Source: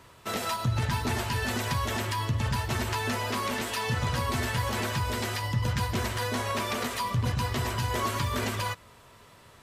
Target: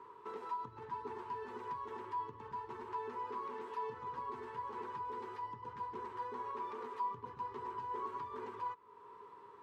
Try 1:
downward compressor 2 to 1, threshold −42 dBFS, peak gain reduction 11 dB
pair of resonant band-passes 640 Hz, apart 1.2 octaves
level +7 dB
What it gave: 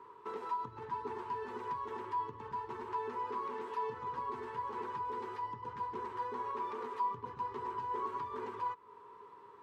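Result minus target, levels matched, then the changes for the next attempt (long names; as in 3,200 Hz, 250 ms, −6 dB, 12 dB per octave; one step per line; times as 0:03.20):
downward compressor: peak gain reduction −3.5 dB
change: downward compressor 2 to 1, threshold −49 dBFS, peak gain reduction 14.5 dB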